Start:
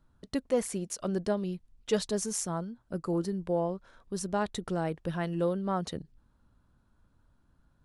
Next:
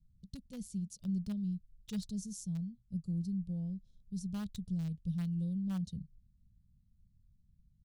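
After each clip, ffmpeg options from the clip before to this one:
ffmpeg -i in.wav -filter_complex "[0:a]firequalizer=gain_entry='entry(190,0);entry(310,-26);entry(2200,-15);entry(3600,-9);entry(9200,-15)':delay=0.05:min_phase=1,acrossover=split=550|3700[link_01][link_02][link_03];[link_02]acrusher=bits=7:mix=0:aa=0.000001[link_04];[link_01][link_04][link_03]amix=inputs=3:normalize=0" out.wav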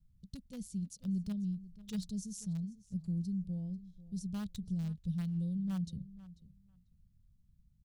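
ffmpeg -i in.wav -filter_complex "[0:a]asplit=2[link_01][link_02];[link_02]adelay=492,lowpass=frequency=4700:poles=1,volume=-17dB,asplit=2[link_03][link_04];[link_04]adelay=492,lowpass=frequency=4700:poles=1,volume=0.15[link_05];[link_01][link_03][link_05]amix=inputs=3:normalize=0" out.wav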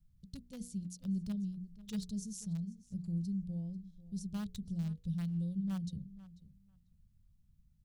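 ffmpeg -i in.wav -af "bandreject=frequency=60:width_type=h:width=6,bandreject=frequency=120:width_type=h:width=6,bandreject=frequency=180:width_type=h:width=6,bandreject=frequency=240:width_type=h:width=6,bandreject=frequency=300:width_type=h:width=6,bandreject=frequency=360:width_type=h:width=6,bandreject=frequency=420:width_type=h:width=6,bandreject=frequency=480:width_type=h:width=6" out.wav

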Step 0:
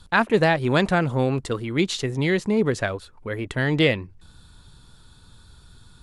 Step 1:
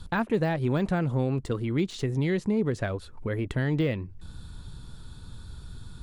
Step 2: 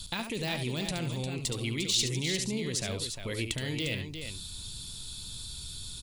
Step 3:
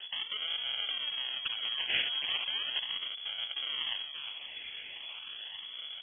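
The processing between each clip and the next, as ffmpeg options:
ffmpeg -i in.wav -af "deesser=0.7,lowshelf=frequency=420:gain=8.5,acompressor=threshold=-31dB:ratio=2" out.wav
ffmpeg -i in.wav -af "alimiter=limit=-21.5dB:level=0:latency=1,aexciter=amount=5.3:drive=8.5:freq=2300,aecho=1:1:71|352:0.398|0.398,volume=-5.5dB" out.wav
ffmpeg -i in.wav -af "asuperstop=centerf=1900:order=8:qfactor=2.9,acrusher=samples=38:mix=1:aa=0.000001:lfo=1:lforange=38:lforate=0.37,lowpass=frequency=2900:width_type=q:width=0.5098,lowpass=frequency=2900:width_type=q:width=0.6013,lowpass=frequency=2900:width_type=q:width=0.9,lowpass=frequency=2900:width_type=q:width=2.563,afreqshift=-3400,volume=-2.5dB" out.wav

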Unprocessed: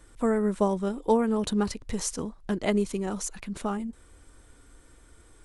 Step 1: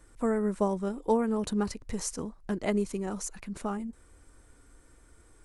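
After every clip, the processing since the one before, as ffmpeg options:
ffmpeg -i in.wav -af "equalizer=frequency=3400:width_type=o:width=0.58:gain=-5.5,volume=-3dB" out.wav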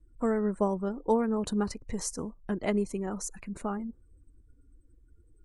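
ffmpeg -i in.wav -af "afftdn=noise_reduction=28:noise_floor=-52" out.wav

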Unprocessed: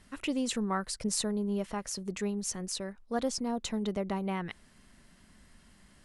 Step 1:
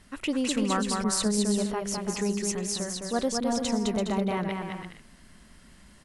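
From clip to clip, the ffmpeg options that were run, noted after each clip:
ffmpeg -i in.wav -af "aecho=1:1:210|336|411.6|457|484.2:0.631|0.398|0.251|0.158|0.1,volume=3.5dB" out.wav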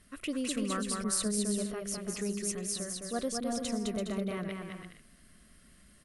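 ffmpeg -i in.wav -af "superequalizer=9b=0.282:16b=2.24,volume=-6.5dB" out.wav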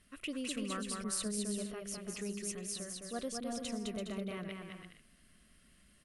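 ffmpeg -i in.wav -af "equalizer=frequency=2800:width_type=o:width=0.66:gain=5.5,volume=-6dB" out.wav

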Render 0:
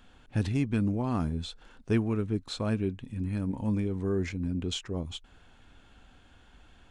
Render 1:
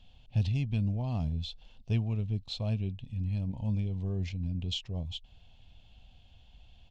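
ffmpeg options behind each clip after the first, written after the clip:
ffmpeg -i in.wav -af "firequalizer=gain_entry='entry(120,0);entry(320,-18);entry(660,-5);entry(1400,-24);entry(2800,-1);entry(4700,-3);entry(8900,-20)':delay=0.05:min_phase=1,volume=2dB" out.wav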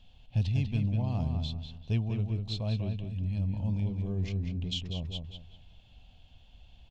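ffmpeg -i in.wav -filter_complex "[0:a]asplit=2[link_01][link_02];[link_02]adelay=195,lowpass=frequency=3200:poles=1,volume=-5dB,asplit=2[link_03][link_04];[link_04]adelay=195,lowpass=frequency=3200:poles=1,volume=0.32,asplit=2[link_05][link_06];[link_06]adelay=195,lowpass=frequency=3200:poles=1,volume=0.32,asplit=2[link_07][link_08];[link_08]adelay=195,lowpass=frequency=3200:poles=1,volume=0.32[link_09];[link_01][link_03][link_05][link_07][link_09]amix=inputs=5:normalize=0" out.wav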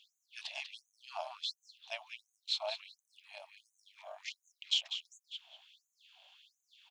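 ffmpeg -i in.wav -af "tremolo=f=240:d=0.75,afftfilt=real='re*gte(b*sr/1024,540*pow(6200/540,0.5+0.5*sin(2*PI*1.4*pts/sr)))':imag='im*gte(b*sr/1024,540*pow(6200/540,0.5+0.5*sin(2*PI*1.4*pts/sr)))':win_size=1024:overlap=0.75,volume=8dB" out.wav

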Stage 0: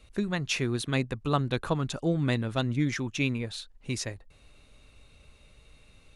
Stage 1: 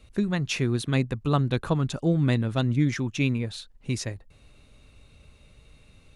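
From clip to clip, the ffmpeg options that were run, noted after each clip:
ffmpeg -i in.wav -af "equalizer=frequency=130:width_type=o:width=2.8:gain=5.5" out.wav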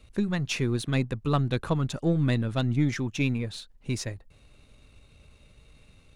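ffmpeg -i in.wav -af "aeval=exprs='if(lt(val(0),0),0.708*val(0),val(0))':channel_layout=same" out.wav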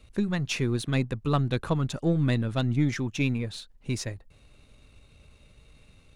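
ffmpeg -i in.wav -af anull out.wav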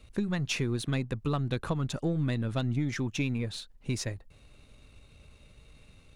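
ffmpeg -i in.wav -af "acompressor=threshold=-26dB:ratio=6" out.wav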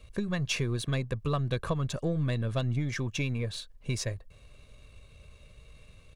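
ffmpeg -i in.wav -af "aecho=1:1:1.8:0.45" out.wav

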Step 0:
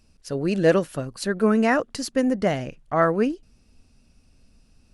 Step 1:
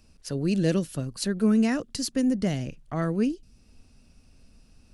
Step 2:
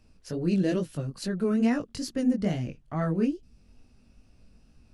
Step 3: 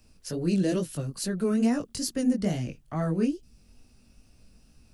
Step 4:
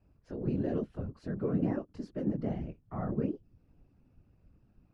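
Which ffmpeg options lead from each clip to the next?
ffmpeg -i in.wav -filter_complex "[0:a]acrossover=split=310|3000[link_01][link_02][link_03];[link_02]acompressor=threshold=-48dB:ratio=2[link_04];[link_01][link_04][link_03]amix=inputs=3:normalize=0,volume=1.5dB" out.wav
ffmpeg -i in.wav -af "highshelf=frequency=3800:gain=-8.5,flanger=delay=16.5:depth=5.4:speed=2.3,volume=2dB" out.wav
ffmpeg -i in.wav -filter_complex "[0:a]acrossover=split=320|1100|5200[link_01][link_02][link_03][link_04];[link_03]alimiter=level_in=13.5dB:limit=-24dB:level=0:latency=1,volume=-13.5dB[link_05];[link_01][link_02][link_05][link_04]amix=inputs=4:normalize=0,crystalizer=i=2:c=0" out.wav
ffmpeg -i in.wav -af "afftfilt=real='hypot(re,im)*cos(2*PI*random(0))':imag='hypot(re,im)*sin(2*PI*random(1))':win_size=512:overlap=0.75,lowpass=1400" out.wav

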